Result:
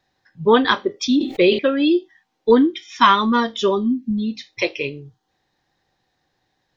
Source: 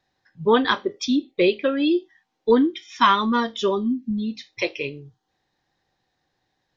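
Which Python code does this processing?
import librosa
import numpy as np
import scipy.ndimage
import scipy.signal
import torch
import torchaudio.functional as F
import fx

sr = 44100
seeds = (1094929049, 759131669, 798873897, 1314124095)

y = fx.sustainer(x, sr, db_per_s=120.0, at=(0.96, 1.59))
y = y * librosa.db_to_amplitude(3.5)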